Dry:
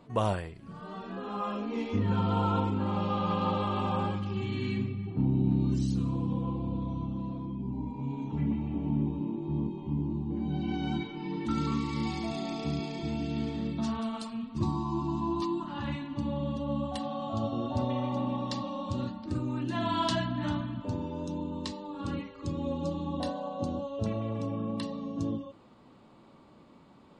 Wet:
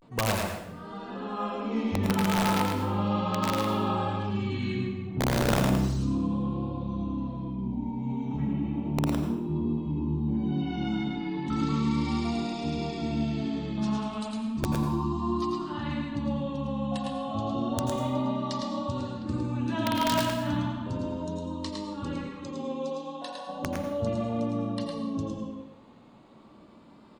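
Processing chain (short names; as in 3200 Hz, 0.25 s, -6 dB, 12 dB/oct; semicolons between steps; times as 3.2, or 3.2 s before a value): 22.4–23.45 HPF 240 Hz -> 950 Hz 12 dB/oct; vibrato 0.34 Hz 70 cents; wrapped overs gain 19 dB; echo 0.108 s -4.5 dB; plate-style reverb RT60 0.75 s, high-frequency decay 0.85×, pre-delay 75 ms, DRR 5 dB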